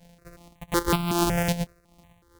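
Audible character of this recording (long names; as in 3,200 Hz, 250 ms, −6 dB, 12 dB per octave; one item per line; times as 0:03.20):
a buzz of ramps at a fixed pitch in blocks of 256 samples
tremolo triangle 2.6 Hz, depth 65%
notches that jump at a steady rate 5.4 Hz 330–1,800 Hz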